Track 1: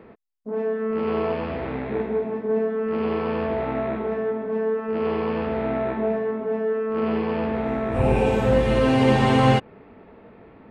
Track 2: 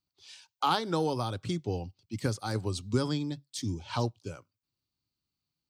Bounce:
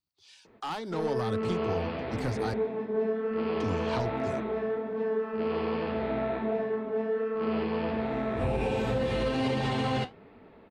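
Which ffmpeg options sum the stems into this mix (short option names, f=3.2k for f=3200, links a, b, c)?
-filter_complex "[0:a]equalizer=f=4.2k:t=o:w=0.93:g=7.5,flanger=delay=6.3:depth=7.8:regen=-56:speed=1.3:shape=triangular,adelay=450,volume=-8dB[a];[1:a]acrossover=split=3800[b][c];[c]acompressor=threshold=-52dB:ratio=4:attack=1:release=60[d];[b][d]amix=inputs=2:normalize=0,asoftclip=type=tanh:threshold=-28dB,volume=-4dB,asplit=3[e][f][g];[e]atrim=end=2.54,asetpts=PTS-STARTPTS,afade=t=out:st=2.536:d=0.004:c=hsin[h];[f]atrim=start=2.54:end=3.6,asetpts=PTS-STARTPTS,volume=0[i];[g]atrim=start=3.6,asetpts=PTS-STARTPTS,afade=t=in:d=0.004:c=hsin[j];[h][i][j]concat=n=3:v=0:a=1[k];[a][k]amix=inputs=2:normalize=0,dynaudnorm=f=620:g=3:m=6.5dB,alimiter=limit=-20dB:level=0:latency=1:release=89"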